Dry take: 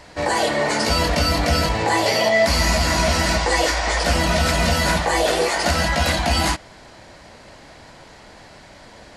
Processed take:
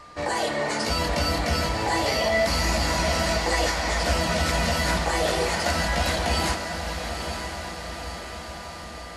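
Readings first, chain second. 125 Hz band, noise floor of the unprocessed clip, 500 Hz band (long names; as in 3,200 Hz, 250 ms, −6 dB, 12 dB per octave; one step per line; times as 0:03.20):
−5.0 dB, −45 dBFS, −5.0 dB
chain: feedback delay with all-pass diffusion 926 ms, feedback 62%, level −7.5 dB
steady tone 1,200 Hz −39 dBFS
level −6 dB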